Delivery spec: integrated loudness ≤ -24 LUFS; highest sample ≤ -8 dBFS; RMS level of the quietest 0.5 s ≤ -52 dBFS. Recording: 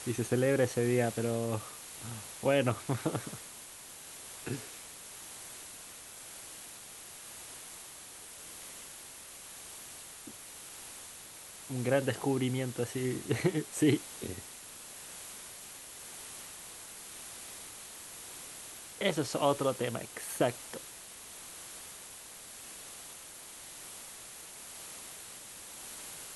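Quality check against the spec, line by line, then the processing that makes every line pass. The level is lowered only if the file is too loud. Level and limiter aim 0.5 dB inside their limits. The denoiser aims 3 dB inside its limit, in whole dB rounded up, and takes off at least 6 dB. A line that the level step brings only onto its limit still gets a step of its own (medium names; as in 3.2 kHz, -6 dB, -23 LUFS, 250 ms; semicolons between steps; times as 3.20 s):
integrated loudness -37.0 LUFS: pass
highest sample -13.5 dBFS: pass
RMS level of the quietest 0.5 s -49 dBFS: fail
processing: noise reduction 6 dB, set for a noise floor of -49 dBFS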